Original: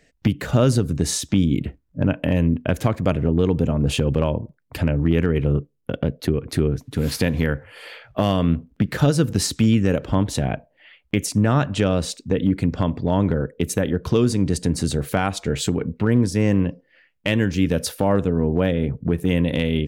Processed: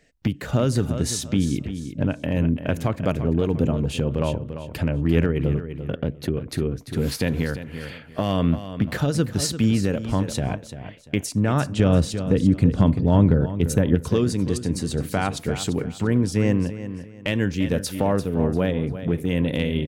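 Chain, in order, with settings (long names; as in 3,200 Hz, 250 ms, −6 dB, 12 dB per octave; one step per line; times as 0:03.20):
0:11.79–0:13.95: low-shelf EQ 300 Hz +9 dB
repeating echo 344 ms, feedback 28%, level −11 dB
amplitude modulation by smooth noise, depth 55%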